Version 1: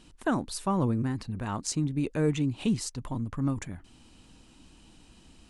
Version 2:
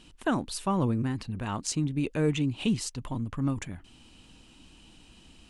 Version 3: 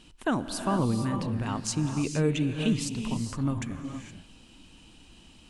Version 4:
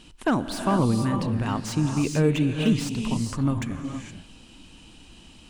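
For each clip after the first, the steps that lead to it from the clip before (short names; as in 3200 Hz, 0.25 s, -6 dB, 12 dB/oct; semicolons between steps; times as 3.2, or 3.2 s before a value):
bell 2900 Hz +6 dB 0.65 oct
non-linear reverb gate 0.49 s rising, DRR 5.5 dB
slew limiter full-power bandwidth 75 Hz; gain +4.5 dB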